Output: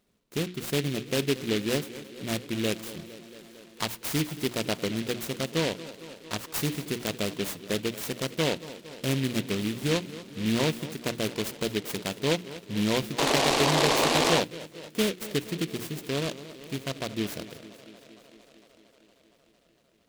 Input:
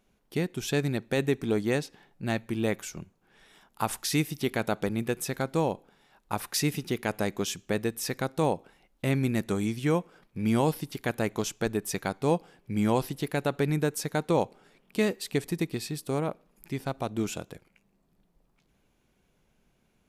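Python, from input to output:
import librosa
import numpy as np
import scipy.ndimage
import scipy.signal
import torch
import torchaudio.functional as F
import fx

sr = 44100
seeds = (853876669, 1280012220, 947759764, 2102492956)

y = fx.notch_comb(x, sr, f0_hz=810.0)
y = fx.echo_tape(y, sr, ms=229, feedback_pct=83, wet_db=-14.0, lp_hz=5500.0, drive_db=17.0, wow_cents=30)
y = fx.spec_paint(y, sr, seeds[0], shape='noise', start_s=13.18, length_s=1.22, low_hz=230.0, high_hz=1200.0, level_db=-24.0)
y = fx.hum_notches(y, sr, base_hz=60, count=6)
y = fx.noise_mod_delay(y, sr, seeds[1], noise_hz=2700.0, depth_ms=0.16)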